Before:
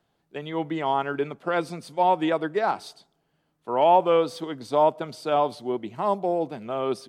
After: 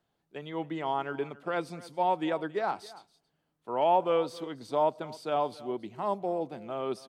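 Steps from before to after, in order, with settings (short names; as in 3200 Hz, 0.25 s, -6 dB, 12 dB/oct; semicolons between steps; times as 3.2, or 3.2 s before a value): echo 0.274 s -19.5 dB; gain -6.5 dB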